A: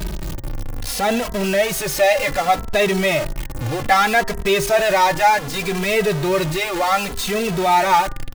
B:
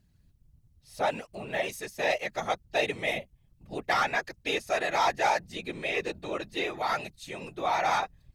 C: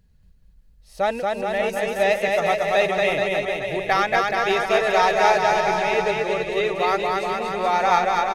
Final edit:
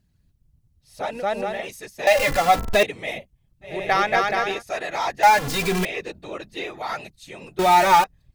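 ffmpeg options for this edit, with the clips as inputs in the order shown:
-filter_complex "[2:a]asplit=2[s0][s1];[0:a]asplit=3[s2][s3][s4];[1:a]asplit=6[s5][s6][s7][s8][s9][s10];[s5]atrim=end=1.27[s11];[s0]atrim=start=1.03:end=1.67[s12];[s6]atrim=start=1.43:end=2.072[s13];[s2]atrim=start=2.068:end=2.832[s14];[s7]atrim=start=2.828:end=3.85[s15];[s1]atrim=start=3.61:end=4.63[s16];[s8]atrim=start=4.39:end=5.232[s17];[s3]atrim=start=5.228:end=5.852[s18];[s9]atrim=start=5.848:end=7.592[s19];[s4]atrim=start=7.588:end=8.042[s20];[s10]atrim=start=8.038[s21];[s11][s12]acrossfade=d=0.24:c1=tri:c2=tri[s22];[s22][s13]acrossfade=d=0.24:c1=tri:c2=tri[s23];[s23][s14]acrossfade=d=0.004:c1=hsin:c2=hsin[s24];[s24][s15]acrossfade=d=0.004:c1=hsin:c2=hsin[s25];[s25][s16]acrossfade=d=0.24:c1=tri:c2=tri[s26];[s26][s17]acrossfade=d=0.24:c1=tri:c2=tri[s27];[s27][s18]acrossfade=d=0.004:c1=hsin:c2=hsin[s28];[s28][s19]acrossfade=d=0.004:c1=hsin:c2=hsin[s29];[s29][s20]acrossfade=d=0.004:c1=hsin:c2=hsin[s30];[s30][s21]acrossfade=d=0.004:c1=hsin:c2=hsin"

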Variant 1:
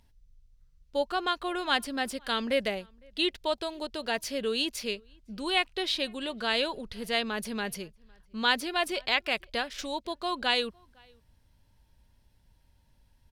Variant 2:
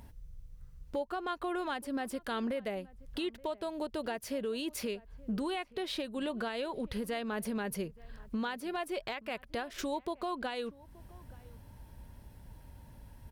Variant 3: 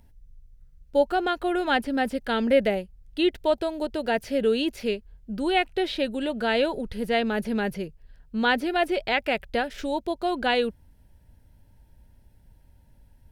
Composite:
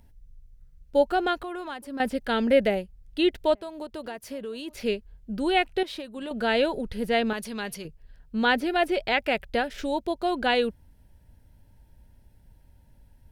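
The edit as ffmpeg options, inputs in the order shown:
-filter_complex "[1:a]asplit=3[s0][s1][s2];[2:a]asplit=5[s3][s4][s5][s6][s7];[s3]atrim=end=1.432[s8];[s0]atrim=start=1.428:end=2.002[s9];[s4]atrim=start=1.998:end=3.552[s10];[s1]atrim=start=3.548:end=4.742[s11];[s5]atrim=start=4.738:end=5.832[s12];[s2]atrim=start=5.828:end=6.312[s13];[s6]atrim=start=6.308:end=7.332[s14];[0:a]atrim=start=7.328:end=7.852[s15];[s7]atrim=start=7.848[s16];[s8][s9]acrossfade=d=0.004:c1=hsin:c2=hsin[s17];[s17][s10]acrossfade=d=0.004:c1=hsin:c2=hsin[s18];[s18][s11]acrossfade=d=0.004:c1=hsin:c2=hsin[s19];[s19][s12]acrossfade=d=0.004:c1=hsin:c2=hsin[s20];[s20][s13]acrossfade=d=0.004:c1=hsin:c2=hsin[s21];[s21][s14]acrossfade=d=0.004:c1=hsin:c2=hsin[s22];[s22][s15]acrossfade=d=0.004:c1=hsin:c2=hsin[s23];[s23][s16]acrossfade=d=0.004:c1=hsin:c2=hsin"

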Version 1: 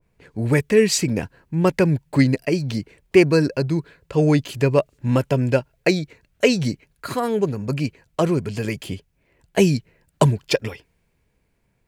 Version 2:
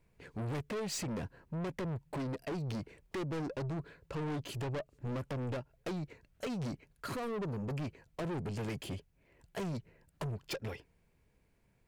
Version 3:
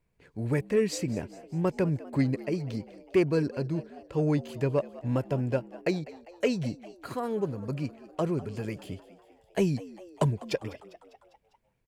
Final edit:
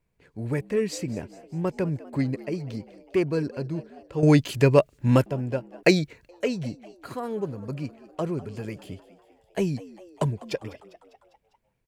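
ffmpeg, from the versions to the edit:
-filter_complex "[0:a]asplit=2[s0][s1];[2:a]asplit=3[s2][s3][s4];[s2]atrim=end=4.232[s5];[s0]atrim=start=4.228:end=5.262[s6];[s3]atrim=start=5.258:end=5.832[s7];[s1]atrim=start=5.828:end=6.292[s8];[s4]atrim=start=6.288[s9];[s5][s6]acrossfade=d=0.004:c1=hsin:c2=hsin[s10];[s10][s7]acrossfade=d=0.004:c1=hsin:c2=hsin[s11];[s11][s8]acrossfade=d=0.004:c1=hsin:c2=hsin[s12];[s12][s9]acrossfade=d=0.004:c1=hsin:c2=hsin"

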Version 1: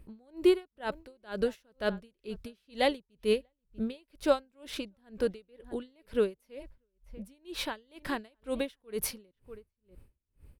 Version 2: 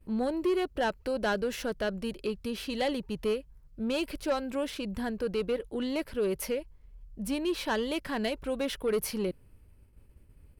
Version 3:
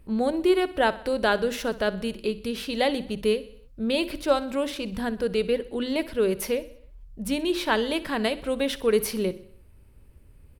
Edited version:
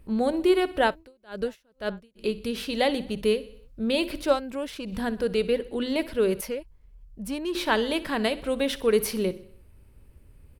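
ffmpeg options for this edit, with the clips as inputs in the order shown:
-filter_complex "[1:a]asplit=2[s0][s1];[2:a]asplit=4[s2][s3][s4][s5];[s2]atrim=end=0.96[s6];[0:a]atrim=start=0.86:end=2.25[s7];[s3]atrim=start=2.15:end=4.41[s8];[s0]atrim=start=4.31:end=4.94[s9];[s4]atrim=start=4.84:end=6.412[s10];[s1]atrim=start=6.408:end=7.552[s11];[s5]atrim=start=7.548[s12];[s6][s7]acrossfade=d=0.1:c1=tri:c2=tri[s13];[s13][s8]acrossfade=d=0.1:c1=tri:c2=tri[s14];[s14][s9]acrossfade=d=0.1:c1=tri:c2=tri[s15];[s15][s10]acrossfade=d=0.1:c1=tri:c2=tri[s16];[s16][s11]acrossfade=d=0.004:c1=hsin:c2=hsin[s17];[s17][s12]acrossfade=d=0.004:c1=hsin:c2=hsin"

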